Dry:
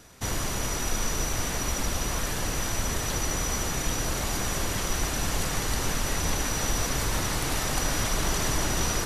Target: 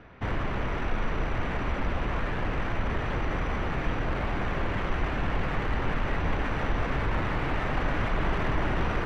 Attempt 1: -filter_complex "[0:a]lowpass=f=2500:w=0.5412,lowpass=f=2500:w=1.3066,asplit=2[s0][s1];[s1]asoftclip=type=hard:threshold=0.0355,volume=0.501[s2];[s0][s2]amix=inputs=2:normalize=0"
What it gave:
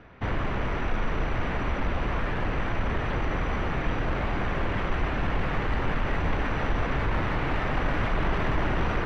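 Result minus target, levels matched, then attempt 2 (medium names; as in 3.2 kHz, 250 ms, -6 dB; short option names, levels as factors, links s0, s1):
hard clipper: distortion -4 dB
-filter_complex "[0:a]lowpass=f=2500:w=0.5412,lowpass=f=2500:w=1.3066,asplit=2[s0][s1];[s1]asoftclip=type=hard:threshold=0.0126,volume=0.501[s2];[s0][s2]amix=inputs=2:normalize=0"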